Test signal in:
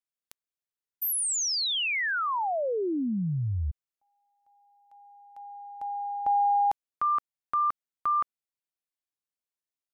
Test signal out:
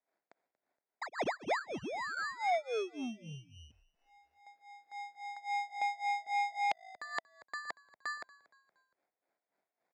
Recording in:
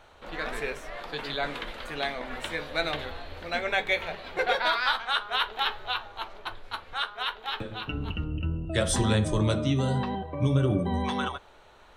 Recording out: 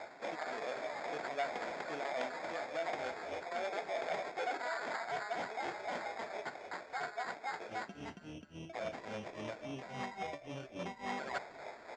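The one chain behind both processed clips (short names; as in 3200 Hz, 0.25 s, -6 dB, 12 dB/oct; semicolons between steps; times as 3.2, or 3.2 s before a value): dynamic EQ 400 Hz, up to -5 dB, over -42 dBFS, Q 0.85; limiter -23 dBFS; reverse; compressor 12:1, threshold -40 dBFS; reverse; harmonic tremolo 3.6 Hz, depth 100%, crossover 1700 Hz; sample-and-hold 15×; speaker cabinet 290–5900 Hz, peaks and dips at 680 Hz +7 dB, 1200 Hz -6 dB, 2200 Hz +4 dB, 4200 Hz -8 dB; on a send: frequency-shifting echo 0.234 s, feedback 45%, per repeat -53 Hz, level -22 dB; on the sum: core saturation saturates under 1700 Hz; gain +10.5 dB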